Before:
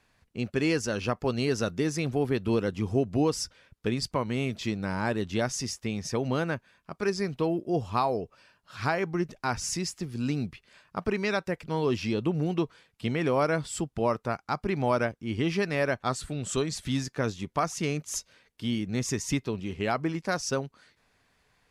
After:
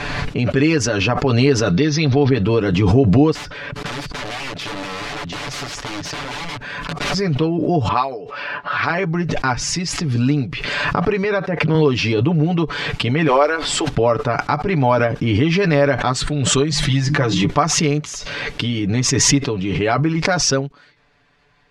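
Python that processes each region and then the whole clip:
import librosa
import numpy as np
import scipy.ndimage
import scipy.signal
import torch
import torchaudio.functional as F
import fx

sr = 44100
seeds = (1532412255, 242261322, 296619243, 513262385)

y = fx.chain(x, sr, fx.ellip_lowpass(hz=6000.0, order=4, stop_db=40),
    fx.peak_eq(hz=4000.0, db=9.5, octaves=0.69),
    fx.notch(hz=3000.0, q=27.0), at=(1.71, 2.3))
y = fx.chain(y, sr, fx.overflow_wrap(gain_db=31.0),
    fx.band_squash(depth_pct=70), at=(3.35, 7.14))
y = fx.chain(y, sr, fx.env_lowpass(base_hz=1600.0, full_db=-23.5),
    fx.highpass(hz=630.0, slope=6),
    fx.upward_expand(threshold_db=-37.0, expansion=1.5), at=(7.88, 8.9))
y = fx.chain(y, sr, fx.highpass(hz=130.0, slope=12),
    fx.high_shelf(hz=2400.0, db=-9.5),
    fx.notch(hz=7500.0, q=6.5), at=(11.24, 11.75))
y = fx.highpass(y, sr, hz=370.0, slope=24, at=(13.27, 13.87), fade=0.02)
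y = fx.dmg_noise_colour(y, sr, seeds[0], colour='pink', level_db=-56.0, at=(13.27, 13.87), fade=0.02)
y = fx.chain(y, sr, fx.hum_notches(base_hz=50, count=6),
    fx.comb(ms=5.9, depth=0.65), at=(16.7, 17.44))
y = scipy.signal.sosfilt(scipy.signal.butter(2, 4300.0, 'lowpass', fs=sr, output='sos'), y)
y = y + 0.71 * np.pad(y, (int(6.9 * sr / 1000.0), 0))[:len(y)]
y = fx.pre_swell(y, sr, db_per_s=22.0)
y = F.gain(torch.from_numpy(y), 7.5).numpy()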